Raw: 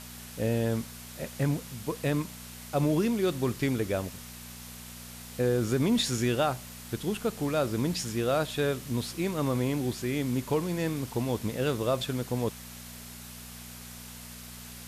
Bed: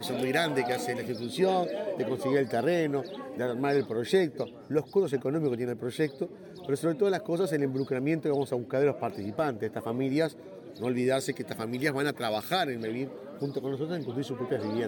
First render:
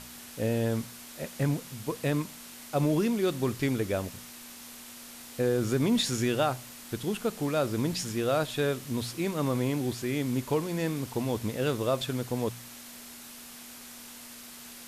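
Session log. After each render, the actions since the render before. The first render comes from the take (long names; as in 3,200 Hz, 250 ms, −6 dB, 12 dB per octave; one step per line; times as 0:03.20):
hum removal 60 Hz, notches 3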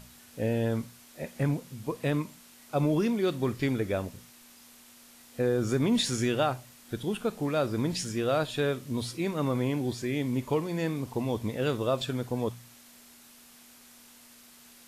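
noise reduction from a noise print 8 dB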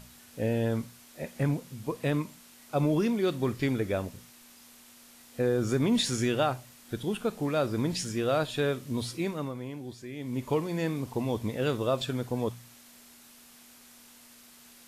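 0:09.21–0:10.50: duck −10 dB, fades 0.33 s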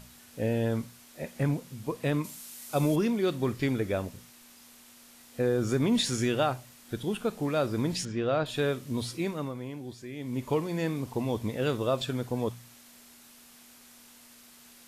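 0:02.24–0:02.96: parametric band 11,000 Hz +12 dB 2.2 octaves
0:08.05–0:08.46: high-frequency loss of the air 180 metres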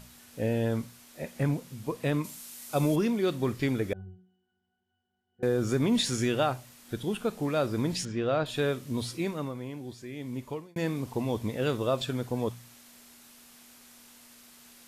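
0:03.93–0:05.43: resonances in every octave F#, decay 0.54 s
0:10.17–0:10.76: fade out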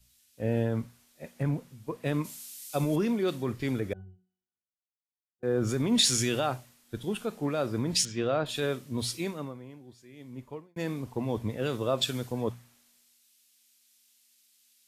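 brickwall limiter −20 dBFS, peak gain reduction 6 dB
multiband upward and downward expander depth 100%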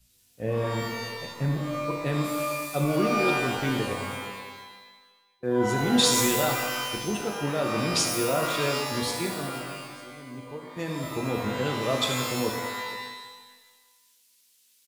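single-tap delay 470 ms −19.5 dB
reverb with rising layers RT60 1.2 s, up +12 semitones, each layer −2 dB, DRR 2.5 dB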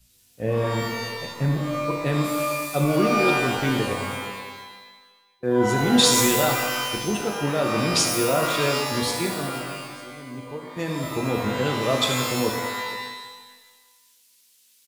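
level +4 dB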